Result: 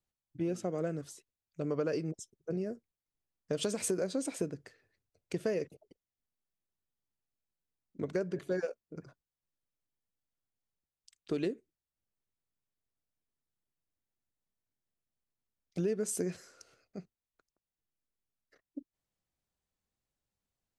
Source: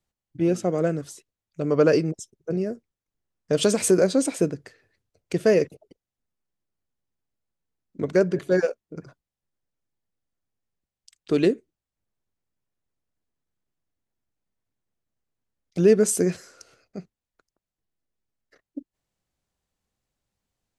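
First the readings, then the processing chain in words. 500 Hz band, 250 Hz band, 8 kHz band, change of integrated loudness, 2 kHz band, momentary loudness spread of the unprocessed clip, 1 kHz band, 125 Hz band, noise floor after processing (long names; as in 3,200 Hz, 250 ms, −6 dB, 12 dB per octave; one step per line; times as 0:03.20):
−13.5 dB, −12.5 dB, −11.0 dB, −13.0 dB, −13.5 dB, 23 LU, −12.5 dB, −11.5 dB, below −85 dBFS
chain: downward compressor 4 to 1, threshold −22 dBFS, peak gain reduction 9 dB
level −8 dB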